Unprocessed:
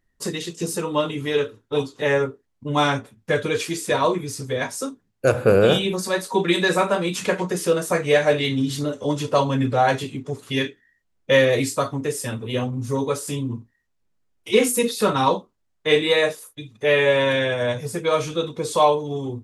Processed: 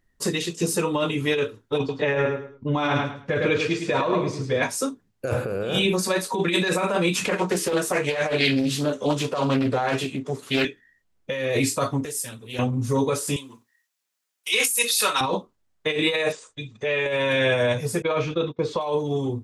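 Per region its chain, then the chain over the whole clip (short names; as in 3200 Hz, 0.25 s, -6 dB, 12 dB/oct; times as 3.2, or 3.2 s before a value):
1.78–4.63 air absorption 150 m + feedback echo 0.106 s, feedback 27%, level -7 dB
7.26–10.65 Bessel high-pass 160 Hz, order 6 + doubler 15 ms -11 dB + Doppler distortion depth 0.43 ms
12.05–12.59 pre-emphasis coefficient 0.8 + Doppler distortion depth 0.15 ms
13.36–15.21 HPF 1200 Hz 6 dB/oct + tilt +2.5 dB/oct
16.32–17.06 steep low-pass 8300 Hz 72 dB/oct + notch 310 Hz, Q 9.4 + compressor 2.5:1, threshold -28 dBFS
18.02–18.81 gate -34 dBFS, range -23 dB + air absorption 200 m
whole clip: negative-ratio compressor -22 dBFS, ratio -1; dynamic EQ 2500 Hz, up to +6 dB, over -47 dBFS, Q 6.9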